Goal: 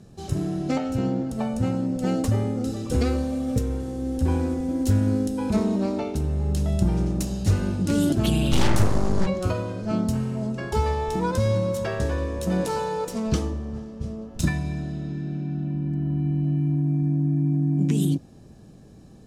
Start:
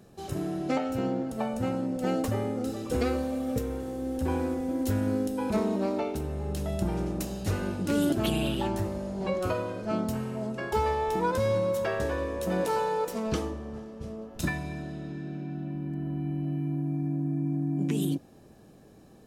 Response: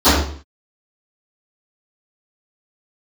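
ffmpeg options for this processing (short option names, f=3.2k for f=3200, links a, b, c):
-filter_complex "[0:a]asplit=3[a][b][c];[a]afade=t=out:st=8.51:d=0.02[d];[b]aeval=exprs='0.126*(cos(1*acos(clip(val(0)/0.126,-1,1)))-cos(1*PI/2))+0.0501*(cos(8*acos(clip(val(0)/0.126,-1,1)))-cos(8*PI/2))':c=same,afade=t=in:st=8.51:d=0.02,afade=t=out:st=9.25:d=0.02[e];[c]afade=t=in:st=9.25:d=0.02[f];[d][e][f]amix=inputs=3:normalize=0,bass=f=250:g=10,treble=f=4k:g=10,adynamicsmooth=sensitivity=3.5:basefreq=7.6k"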